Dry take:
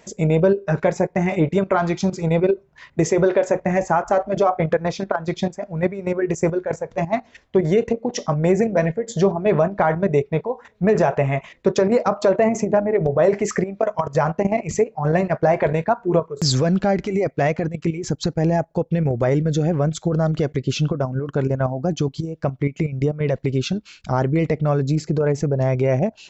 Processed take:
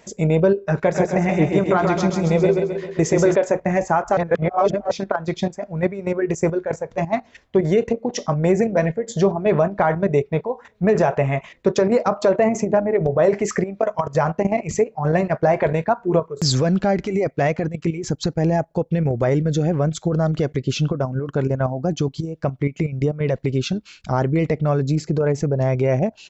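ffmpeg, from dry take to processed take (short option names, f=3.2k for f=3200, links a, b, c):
-filter_complex "[0:a]asplit=3[a][b][c];[a]afade=t=out:st=0.93:d=0.02[d];[b]aecho=1:1:132|264|396|528|660|792|924:0.631|0.334|0.177|0.0939|0.0498|0.0264|0.014,afade=t=in:st=0.93:d=0.02,afade=t=out:st=3.34:d=0.02[e];[c]afade=t=in:st=3.34:d=0.02[f];[d][e][f]amix=inputs=3:normalize=0,asplit=3[g][h][i];[g]atrim=end=4.172[j];[h]atrim=start=4.168:end=4.912,asetpts=PTS-STARTPTS,areverse[k];[i]atrim=start=4.908[l];[j][k]acrossfade=d=0.004:c1=hsin:c2=hsin[m];[m][l]acrossfade=d=0.004:c1=hsin:c2=hsin"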